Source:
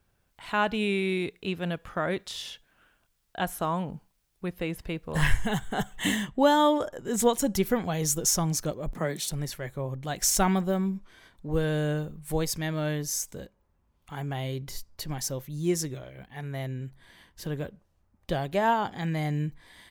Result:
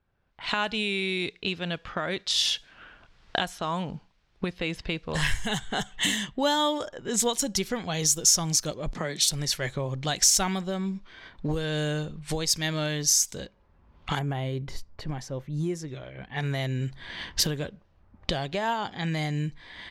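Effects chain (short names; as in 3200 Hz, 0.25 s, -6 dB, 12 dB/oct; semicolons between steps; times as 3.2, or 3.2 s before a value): recorder AGC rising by 20 dB/s; bell 4800 Hz +13 dB 2.1 oct, from 14.19 s -4 dB, from 15.88 s +10.5 dB; low-pass opened by the level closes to 1500 Hz, open at -17 dBFS; gain -5.5 dB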